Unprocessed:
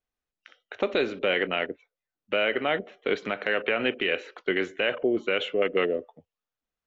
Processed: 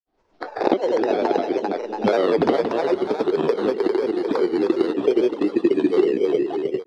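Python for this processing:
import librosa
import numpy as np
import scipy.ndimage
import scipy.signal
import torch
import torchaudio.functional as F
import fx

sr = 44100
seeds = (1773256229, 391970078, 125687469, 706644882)

p1 = fx.bit_reversed(x, sr, seeds[0], block=16)
p2 = fx.doppler_pass(p1, sr, speed_mps=39, closest_m=11.0, pass_at_s=2.1)
p3 = fx.recorder_agc(p2, sr, target_db=-21.0, rise_db_per_s=71.0, max_gain_db=30)
p4 = scipy.signal.sosfilt(scipy.signal.butter(4, 5000.0, 'lowpass', fs=sr, output='sos'), p3)
p5 = fx.small_body(p4, sr, hz=(380.0, 780.0), ring_ms=20, db=15)
p6 = p5 + fx.echo_feedback(p5, sr, ms=309, feedback_pct=37, wet_db=-4.0, dry=0)
p7 = fx.granulator(p6, sr, seeds[1], grain_ms=100.0, per_s=20.0, spray_ms=100.0, spread_st=3)
p8 = fx.band_squash(p7, sr, depth_pct=70)
y = p8 * 10.0 ** (2.0 / 20.0)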